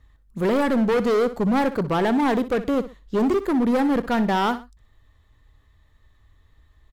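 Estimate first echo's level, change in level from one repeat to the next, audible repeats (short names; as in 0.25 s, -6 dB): -14.0 dB, -10.0 dB, 2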